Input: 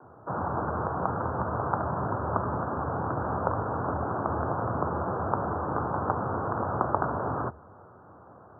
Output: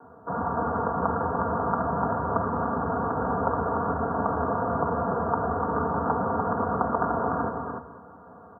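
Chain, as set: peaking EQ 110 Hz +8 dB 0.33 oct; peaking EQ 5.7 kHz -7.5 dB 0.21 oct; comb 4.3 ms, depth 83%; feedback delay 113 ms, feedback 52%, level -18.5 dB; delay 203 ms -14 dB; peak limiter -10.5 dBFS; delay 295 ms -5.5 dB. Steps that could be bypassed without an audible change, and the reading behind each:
peaking EQ 5.7 kHz: input has nothing above 1.6 kHz

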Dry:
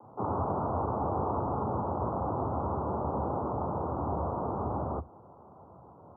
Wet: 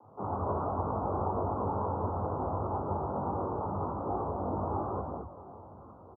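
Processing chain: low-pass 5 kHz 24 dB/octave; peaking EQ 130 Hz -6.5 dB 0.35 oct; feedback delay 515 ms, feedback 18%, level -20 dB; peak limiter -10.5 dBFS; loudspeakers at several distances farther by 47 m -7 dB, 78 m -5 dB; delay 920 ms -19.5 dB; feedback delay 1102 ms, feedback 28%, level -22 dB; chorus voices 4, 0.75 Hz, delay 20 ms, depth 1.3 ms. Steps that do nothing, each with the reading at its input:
low-pass 5 kHz: input has nothing above 1.4 kHz; peak limiter -10.5 dBFS: peak at its input -19.5 dBFS

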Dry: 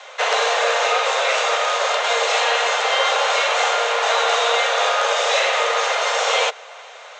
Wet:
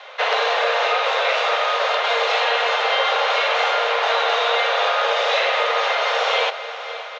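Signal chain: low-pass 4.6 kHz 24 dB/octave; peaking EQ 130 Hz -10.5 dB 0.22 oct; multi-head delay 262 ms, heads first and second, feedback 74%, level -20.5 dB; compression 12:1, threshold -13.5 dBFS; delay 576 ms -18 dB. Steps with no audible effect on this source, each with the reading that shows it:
peaking EQ 130 Hz: input has nothing below 360 Hz

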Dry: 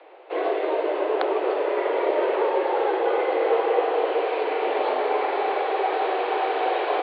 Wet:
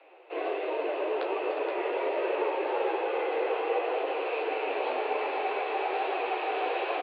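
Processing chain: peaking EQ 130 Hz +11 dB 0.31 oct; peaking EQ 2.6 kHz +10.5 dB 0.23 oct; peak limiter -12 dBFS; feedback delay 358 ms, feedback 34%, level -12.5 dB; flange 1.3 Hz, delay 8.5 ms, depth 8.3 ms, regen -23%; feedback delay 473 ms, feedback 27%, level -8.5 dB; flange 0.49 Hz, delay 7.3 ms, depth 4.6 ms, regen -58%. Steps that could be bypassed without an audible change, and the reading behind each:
peaking EQ 130 Hz: input has nothing below 250 Hz

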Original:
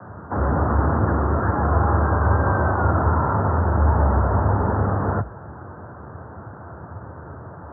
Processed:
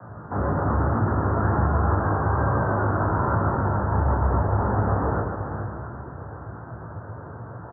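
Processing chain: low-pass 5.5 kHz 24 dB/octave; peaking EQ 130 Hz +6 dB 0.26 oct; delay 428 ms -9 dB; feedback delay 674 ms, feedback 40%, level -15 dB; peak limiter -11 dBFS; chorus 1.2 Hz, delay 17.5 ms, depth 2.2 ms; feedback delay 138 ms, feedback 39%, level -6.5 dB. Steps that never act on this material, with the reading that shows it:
low-pass 5.5 kHz: input has nothing above 1.6 kHz

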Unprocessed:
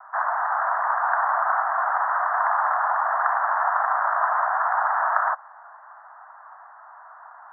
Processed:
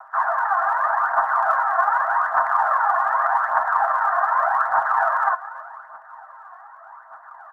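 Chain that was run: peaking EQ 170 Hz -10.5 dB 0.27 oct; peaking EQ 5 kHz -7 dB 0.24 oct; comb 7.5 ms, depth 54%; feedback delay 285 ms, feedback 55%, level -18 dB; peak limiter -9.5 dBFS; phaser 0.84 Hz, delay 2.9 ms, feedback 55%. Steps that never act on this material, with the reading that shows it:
peaking EQ 170 Hz: input has nothing below 540 Hz; peaking EQ 5 kHz: input has nothing above 2 kHz

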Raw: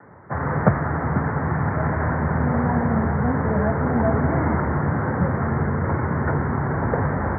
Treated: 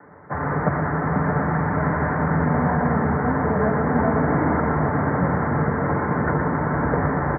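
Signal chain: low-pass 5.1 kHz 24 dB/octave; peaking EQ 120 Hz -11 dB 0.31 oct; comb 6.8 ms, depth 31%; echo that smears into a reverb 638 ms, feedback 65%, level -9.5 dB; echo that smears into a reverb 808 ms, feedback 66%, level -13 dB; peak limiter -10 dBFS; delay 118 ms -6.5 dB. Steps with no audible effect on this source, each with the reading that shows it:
low-pass 5.1 kHz: input has nothing above 1.8 kHz

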